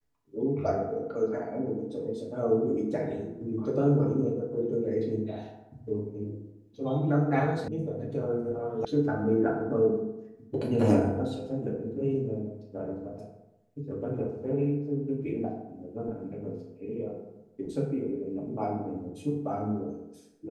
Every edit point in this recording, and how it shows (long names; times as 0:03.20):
0:07.68: cut off before it has died away
0:08.85: cut off before it has died away